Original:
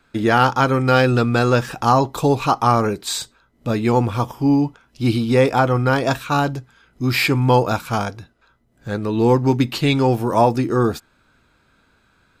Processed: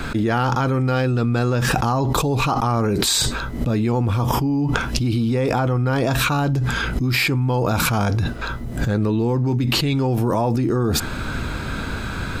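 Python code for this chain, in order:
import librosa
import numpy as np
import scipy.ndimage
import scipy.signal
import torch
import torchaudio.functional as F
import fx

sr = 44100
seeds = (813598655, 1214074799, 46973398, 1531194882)

y = fx.low_shelf(x, sr, hz=250.0, db=8.5)
y = fx.env_flatten(y, sr, amount_pct=100)
y = F.gain(torch.from_numpy(y), -11.0).numpy()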